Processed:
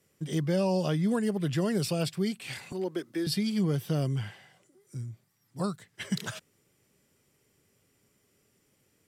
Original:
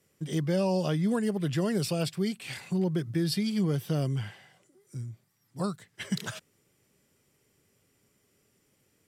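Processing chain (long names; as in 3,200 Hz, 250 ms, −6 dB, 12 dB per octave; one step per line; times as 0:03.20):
0:02.72–0:03.27: high-pass filter 270 Hz 24 dB per octave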